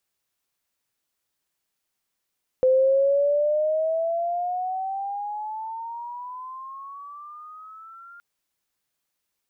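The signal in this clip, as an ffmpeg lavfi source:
ffmpeg -f lavfi -i "aevalsrc='pow(10,(-14.5-28*t/5.57)/20)*sin(2*PI*512*5.57/(17.5*log(2)/12)*(exp(17.5*log(2)/12*t/5.57)-1))':duration=5.57:sample_rate=44100" out.wav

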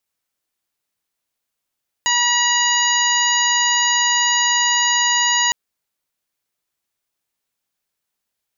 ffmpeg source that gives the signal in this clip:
ffmpeg -f lavfi -i "aevalsrc='0.0891*sin(2*PI*963*t)+0.1*sin(2*PI*1926*t)+0.0891*sin(2*PI*2889*t)+0.0473*sin(2*PI*3852*t)+0.0422*sin(2*PI*4815*t)+0.0133*sin(2*PI*5778*t)+0.112*sin(2*PI*6741*t)':duration=3.46:sample_rate=44100" out.wav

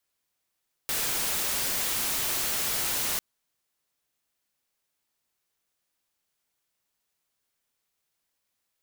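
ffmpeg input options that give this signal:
ffmpeg -f lavfi -i "anoisesrc=color=white:amplitude=0.0651:duration=2.3:sample_rate=44100:seed=1" out.wav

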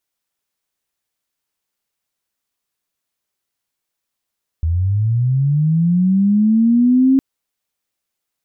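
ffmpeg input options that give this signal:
ffmpeg -f lavfi -i "aevalsrc='pow(10,(-14+5.5*t/2.56)/20)*sin(2*PI*(78*t+192*t*t/(2*2.56)))':duration=2.56:sample_rate=44100" out.wav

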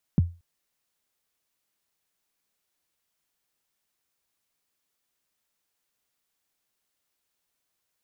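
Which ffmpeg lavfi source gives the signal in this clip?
ffmpeg -f lavfi -i "aevalsrc='0.237*pow(10,-3*t/0.29)*sin(2*PI*(230*0.021/log(86/230)*(exp(log(86/230)*min(t,0.021)/0.021)-1)+86*max(t-0.021,0)))':duration=0.23:sample_rate=44100" out.wav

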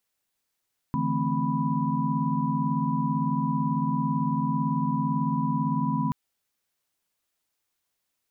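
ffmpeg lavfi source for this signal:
ffmpeg -f lavfi -i "aevalsrc='0.0335*(sin(2*PI*146.83*t)+sin(2*PI*164.81*t)+sin(2*PI*220*t)+sin(2*PI*261.63*t)+sin(2*PI*987.77*t))':duration=5.18:sample_rate=44100" out.wav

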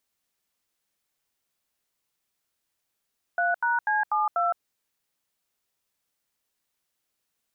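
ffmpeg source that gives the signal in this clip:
ffmpeg -f lavfi -i "aevalsrc='0.0631*clip(min(mod(t,0.245),0.164-mod(t,0.245))/0.002,0,1)*(eq(floor(t/0.245),0)*(sin(2*PI*697*mod(t,0.245))+sin(2*PI*1477*mod(t,0.245)))+eq(floor(t/0.245),1)*(sin(2*PI*941*mod(t,0.245))+sin(2*PI*1477*mod(t,0.245)))+eq(floor(t/0.245),2)*(sin(2*PI*852*mod(t,0.245))+sin(2*PI*1633*mod(t,0.245)))+eq(floor(t/0.245),3)*(sin(2*PI*852*mod(t,0.245))+sin(2*PI*1209*mod(t,0.245)))+eq(floor(t/0.245),4)*(sin(2*PI*697*mod(t,0.245))+sin(2*PI*1336*mod(t,0.245))))':duration=1.225:sample_rate=44100" out.wav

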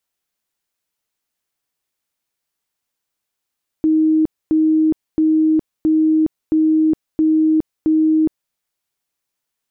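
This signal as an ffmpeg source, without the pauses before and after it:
ffmpeg -f lavfi -i "aevalsrc='0.282*sin(2*PI*314*mod(t,0.67))*lt(mod(t,0.67),130/314)':duration=4.69:sample_rate=44100" out.wav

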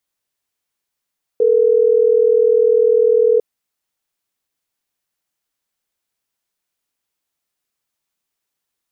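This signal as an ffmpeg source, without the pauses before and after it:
ffmpeg -f lavfi -i "aevalsrc='0.237*(sin(2*PI*440*t)+sin(2*PI*480*t))*clip(min(mod(t,6),2-mod(t,6))/0.005,0,1)':duration=3.12:sample_rate=44100" out.wav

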